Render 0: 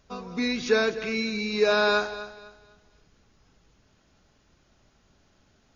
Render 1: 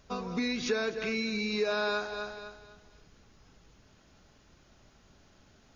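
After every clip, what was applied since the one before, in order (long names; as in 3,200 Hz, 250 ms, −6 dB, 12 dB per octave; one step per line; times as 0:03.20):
downward compressor 3 to 1, threshold −33 dBFS, peak gain reduction 12.5 dB
level +2.5 dB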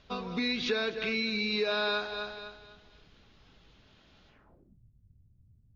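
low-pass filter sweep 3,600 Hz → 110 Hz, 0:04.28–0:04.81
level −1 dB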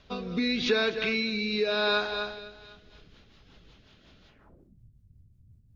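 rotating-speaker cabinet horn 0.85 Hz, later 5.5 Hz, at 0:02.24
level +5.5 dB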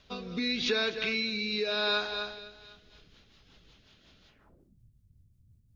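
high-shelf EQ 2,800 Hz +7.5 dB
level −5 dB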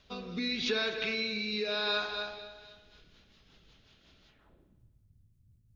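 spring reverb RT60 1.2 s, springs 56 ms, chirp 35 ms, DRR 8 dB
level −2.5 dB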